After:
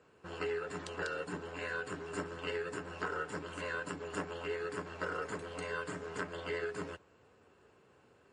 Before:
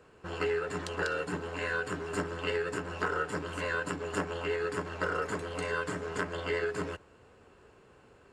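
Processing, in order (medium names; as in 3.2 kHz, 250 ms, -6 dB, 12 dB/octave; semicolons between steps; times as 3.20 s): high-pass 84 Hz 12 dB/octave; trim -5.5 dB; MP3 40 kbps 32 kHz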